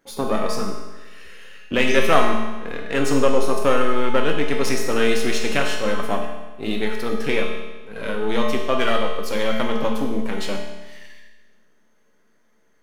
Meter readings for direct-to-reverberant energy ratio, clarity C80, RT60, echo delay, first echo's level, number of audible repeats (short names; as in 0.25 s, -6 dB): 0.0 dB, 5.5 dB, 1.2 s, none, none, none